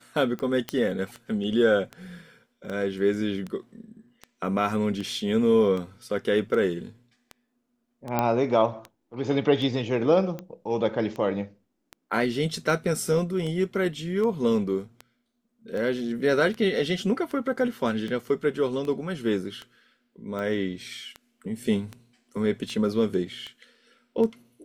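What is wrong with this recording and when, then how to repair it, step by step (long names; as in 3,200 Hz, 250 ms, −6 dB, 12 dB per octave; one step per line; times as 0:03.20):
scratch tick 78 rpm −22 dBFS
0:00.69: click −13 dBFS
0:08.19: click −10 dBFS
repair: click removal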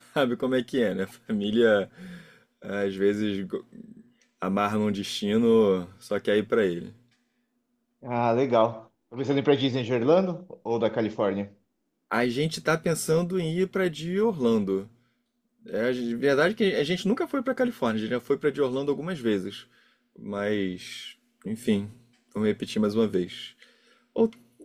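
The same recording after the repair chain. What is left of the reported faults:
none of them is left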